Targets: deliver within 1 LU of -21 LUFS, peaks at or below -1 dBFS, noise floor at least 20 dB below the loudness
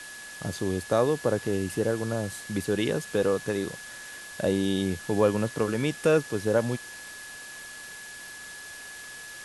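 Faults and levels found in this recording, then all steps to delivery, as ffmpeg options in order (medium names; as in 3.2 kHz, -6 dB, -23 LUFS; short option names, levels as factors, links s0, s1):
steady tone 1.7 kHz; tone level -42 dBFS; noise floor -43 dBFS; noise floor target -48 dBFS; loudness -27.5 LUFS; peak level -9.5 dBFS; loudness target -21.0 LUFS
-> -af "bandreject=f=1700:w=30"
-af "afftdn=nr=6:nf=-43"
-af "volume=2.11"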